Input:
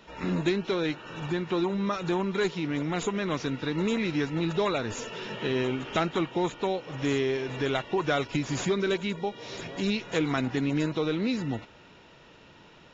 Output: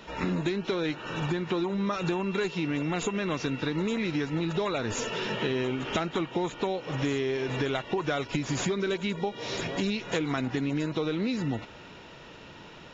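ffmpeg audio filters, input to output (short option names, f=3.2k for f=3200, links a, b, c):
-filter_complex "[0:a]acompressor=threshold=-32dB:ratio=6,asettb=1/sr,asplit=3[a][b][c];[a]atrim=end=1.964[d];[b]atrim=start=1.96:end=3.66,asetpts=PTS-STARTPTS,afade=t=in:d=0.004:c=qsin,afade=t=out:st=1.696:d=0.004:c=qsin,aeval=exprs='val(0)+0.00355*sin(2*PI*2700*n/s)':c=same[e];[c]atrim=start=3.656[f];[d][e]acrossfade=d=0.004:c1=hsin:c2=qsin[g];[g][f]acrossfade=d=0.004:c1=qsin:c2=hsin,volume=6dB"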